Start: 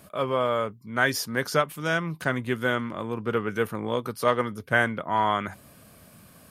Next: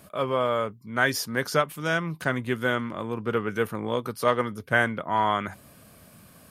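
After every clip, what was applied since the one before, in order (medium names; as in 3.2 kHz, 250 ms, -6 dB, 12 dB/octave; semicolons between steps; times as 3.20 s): no audible change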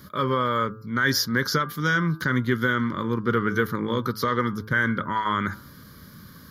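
peak limiter -16 dBFS, peak gain reduction 9 dB; static phaser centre 2.6 kHz, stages 6; de-hum 108.1 Hz, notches 15; trim +8.5 dB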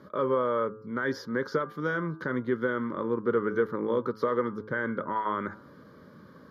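in parallel at -1 dB: compression, threshold -31 dBFS, peak gain reduction 13.5 dB; on the sum: band-pass filter 530 Hz, Q 1.4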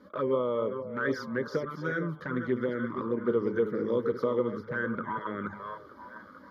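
chunks repeated in reverse 275 ms, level -8 dB; touch-sensitive flanger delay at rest 4.2 ms, full sweep at -22.5 dBFS; repeats whose band climbs or falls 454 ms, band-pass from 590 Hz, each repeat 0.7 oct, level -10 dB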